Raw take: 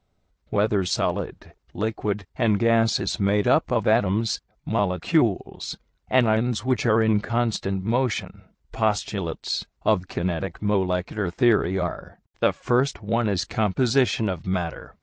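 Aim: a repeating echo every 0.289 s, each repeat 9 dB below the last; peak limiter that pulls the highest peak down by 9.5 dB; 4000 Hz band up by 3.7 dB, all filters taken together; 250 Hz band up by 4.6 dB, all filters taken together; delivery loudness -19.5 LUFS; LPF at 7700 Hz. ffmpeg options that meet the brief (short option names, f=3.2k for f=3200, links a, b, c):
-af "lowpass=7.7k,equalizer=f=250:t=o:g=6,equalizer=f=4k:t=o:g=4.5,alimiter=limit=-14dB:level=0:latency=1,aecho=1:1:289|578|867|1156:0.355|0.124|0.0435|0.0152,volume=5dB"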